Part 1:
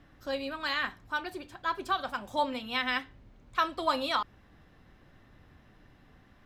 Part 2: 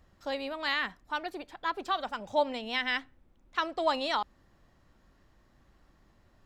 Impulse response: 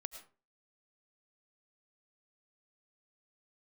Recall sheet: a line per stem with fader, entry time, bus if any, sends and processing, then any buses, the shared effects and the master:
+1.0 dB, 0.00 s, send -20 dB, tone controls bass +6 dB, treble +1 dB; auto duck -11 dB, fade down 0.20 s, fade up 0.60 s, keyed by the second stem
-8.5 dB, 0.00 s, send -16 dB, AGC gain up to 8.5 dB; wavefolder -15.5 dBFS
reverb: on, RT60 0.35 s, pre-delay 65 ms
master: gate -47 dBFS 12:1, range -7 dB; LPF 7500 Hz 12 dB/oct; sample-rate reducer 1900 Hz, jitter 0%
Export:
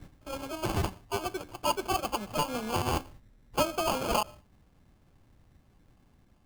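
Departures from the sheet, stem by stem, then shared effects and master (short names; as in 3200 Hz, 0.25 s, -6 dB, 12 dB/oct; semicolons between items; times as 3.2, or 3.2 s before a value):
stem 1 +1.0 dB -> +7.5 dB; stem 2: polarity flipped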